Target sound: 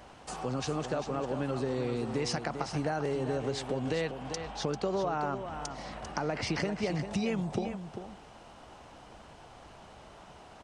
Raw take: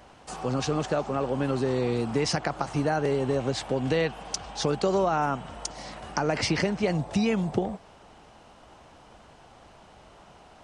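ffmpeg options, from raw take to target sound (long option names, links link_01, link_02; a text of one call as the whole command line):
ffmpeg -i in.wav -filter_complex "[0:a]asettb=1/sr,asplit=3[link_01][link_02][link_03];[link_01]atrim=end=4.114[link_04];[link_02]atrim=start=4.11:end=6.47,asetpts=PTS-STARTPTS,afade=type=in:duration=0.004:curve=qsin,afade=type=out:start_time=2.356:duration=0.004:curve=qsin,highshelf=frequency=5100:gain=-9.5[link_05];[link_03]atrim=start=6.466[link_06];[link_04][link_05]acrossfade=duration=0.004:curve1=hsin:curve2=qsin[link_07];[link_07][link_06]acrossfade=duration=0.004:curve1=qsin:curve2=hsin,acompressor=threshold=-40dB:ratio=1.5,aecho=1:1:395:0.355" out.wav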